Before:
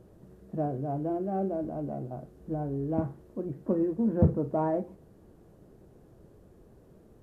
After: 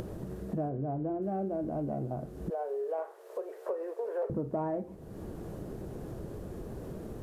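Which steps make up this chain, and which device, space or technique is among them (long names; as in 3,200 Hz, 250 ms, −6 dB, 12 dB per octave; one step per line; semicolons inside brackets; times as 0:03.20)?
0:02.50–0:04.30: Chebyshev high-pass filter 410 Hz, order 6
upward and downward compression (upward compression, threshold −32 dBFS; downward compressor 5 to 1, threshold −33 dBFS, peak gain reduction 8.5 dB)
0:00.69–0:01.22: high-frequency loss of the air 310 metres
level +3 dB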